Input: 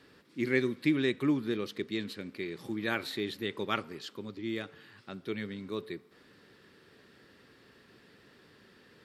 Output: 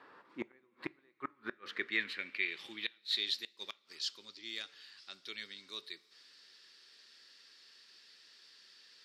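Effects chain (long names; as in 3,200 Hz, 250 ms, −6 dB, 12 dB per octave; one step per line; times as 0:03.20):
gate with flip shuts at −21 dBFS, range −38 dB
coupled-rooms reverb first 0.26 s, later 1.9 s, from −18 dB, DRR 18.5 dB
band-pass filter sweep 1,000 Hz → 5,100 Hz, 0:01.03–0:03.47
level +11.5 dB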